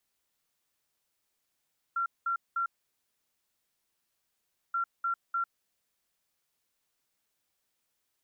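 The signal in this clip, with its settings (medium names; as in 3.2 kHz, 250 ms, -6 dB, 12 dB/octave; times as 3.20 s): beep pattern sine 1.37 kHz, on 0.10 s, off 0.20 s, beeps 3, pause 2.08 s, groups 2, -27 dBFS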